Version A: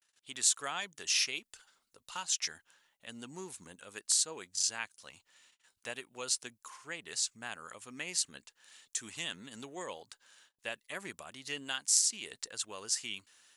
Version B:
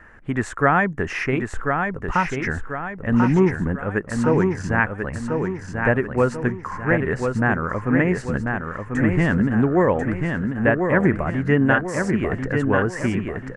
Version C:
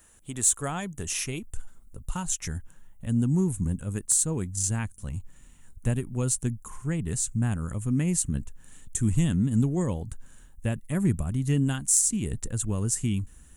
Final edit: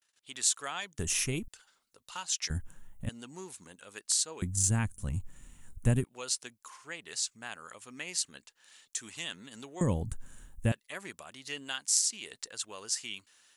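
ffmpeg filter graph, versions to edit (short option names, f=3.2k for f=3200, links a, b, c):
-filter_complex "[2:a]asplit=4[a][b][c][d];[0:a]asplit=5[e][f][g][h][i];[e]atrim=end=0.992[j];[a]atrim=start=0.988:end=1.482[k];[f]atrim=start=1.478:end=2.502[l];[b]atrim=start=2.498:end=3.092[m];[g]atrim=start=3.088:end=4.422[n];[c]atrim=start=4.418:end=6.042[o];[h]atrim=start=6.038:end=9.812[p];[d]atrim=start=9.808:end=10.722[q];[i]atrim=start=10.718[r];[j][k]acrossfade=d=0.004:c1=hsin:c2=hsin[s];[s][l]acrossfade=d=0.004:c1=hsin:c2=hsin[t];[t][m]acrossfade=d=0.004:c1=hsin:c2=hsin[u];[u][n]acrossfade=d=0.004:c1=hsin:c2=hsin[v];[v][o]acrossfade=d=0.004:c1=hsin:c2=hsin[w];[w][p]acrossfade=d=0.004:c1=hsin:c2=hsin[x];[x][q]acrossfade=d=0.004:c1=hsin:c2=hsin[y];[y][r]acrossfade=d=0.004:c1=hsin:c2=hsin"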